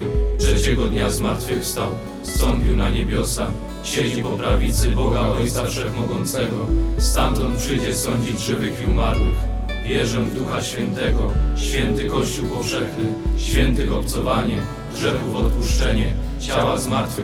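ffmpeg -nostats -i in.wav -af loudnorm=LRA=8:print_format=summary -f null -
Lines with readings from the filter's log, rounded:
Input Integrated:    -21.3 LUFS
Input True Peak:      -4.1 dBTP
Input LRA:             0.9 LU
Input Threshold:     -31.3 LUFS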